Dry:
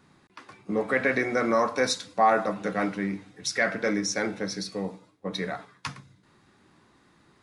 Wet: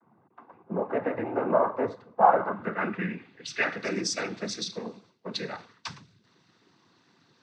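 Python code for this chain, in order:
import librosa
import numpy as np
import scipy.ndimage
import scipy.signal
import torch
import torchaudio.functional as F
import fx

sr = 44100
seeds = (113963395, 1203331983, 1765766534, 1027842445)

y = fx.filter_sweep_lowpass(x, sr, from_hz=870.0, to_hz=4800.0, start_s=2.18, end_s=3.89, q=2.3)
y = fx.noise_vocoder(y, sr, seeds[0], bands=16)
y = y * 10.0 ** (-3.5 / 20.0)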